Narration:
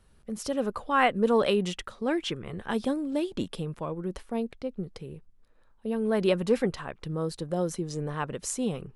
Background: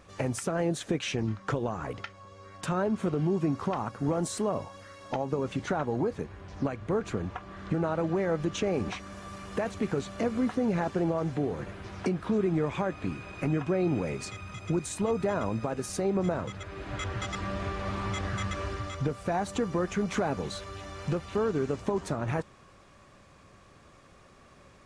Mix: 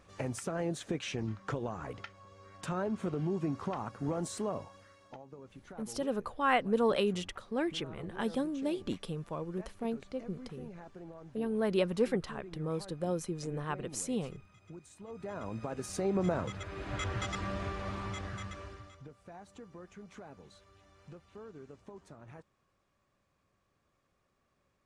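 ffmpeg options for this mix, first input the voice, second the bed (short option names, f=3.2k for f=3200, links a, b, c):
-filter_complex "[0:a]adelay=5500,volume=-5dB[a];[1:a]volume=13dB,afade=t=out:st=4.5:d=0.72:silence=0.188365,afade=t=in:st=15.05:d=1.32:silence=0.112202,afade=t=out:st=17.15:d=1.88:silence=0.105925[b];[a][b]amix=inputs=2:normalize=0"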